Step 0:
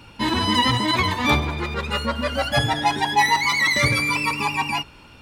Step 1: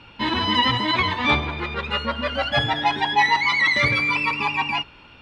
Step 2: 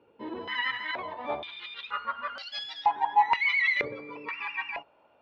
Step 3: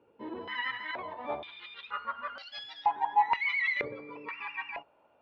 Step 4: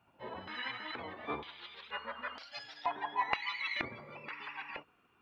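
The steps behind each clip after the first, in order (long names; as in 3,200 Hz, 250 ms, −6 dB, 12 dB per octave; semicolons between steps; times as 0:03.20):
drawn EQ curve 140 Hz 0 dB, 3,300 Hz +6 dB, 15,000 Hz −26 dB; level −4 dB
band-pass on a step sequencer 2.1 Hz 450–4,800 Hz; level −1 dB
high-shelf EQ 3,900 Hz −9 dB; level −2.5 dB
gate on every frequency bin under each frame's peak −10 dB weak; level +4 dB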